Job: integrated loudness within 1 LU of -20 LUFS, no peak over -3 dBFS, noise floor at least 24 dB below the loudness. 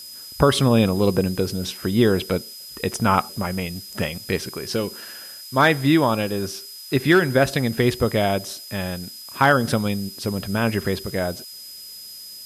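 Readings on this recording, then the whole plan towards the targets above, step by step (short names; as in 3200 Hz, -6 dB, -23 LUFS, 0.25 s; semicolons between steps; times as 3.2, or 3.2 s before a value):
steady tone 5000 Hz; tone level -38 dBFS; noise floor -39 dBFS; noise floor target -46 dBFS; loudness -21.5 LUFS; peak -2.5 dBFS; loudness target -20.0 LUFS
-> notch 5000 Hz, Q 30; noise print and reduce 7 dB; gain +1.5 dB; limiter -3 dBFS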